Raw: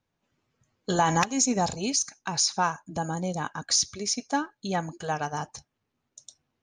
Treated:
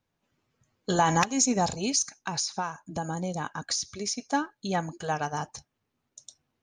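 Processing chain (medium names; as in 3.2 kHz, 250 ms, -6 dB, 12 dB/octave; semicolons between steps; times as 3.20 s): 2.20–4.28 s: compression 6:1, threshold -27 dBFS, peak gain reduction 8 dB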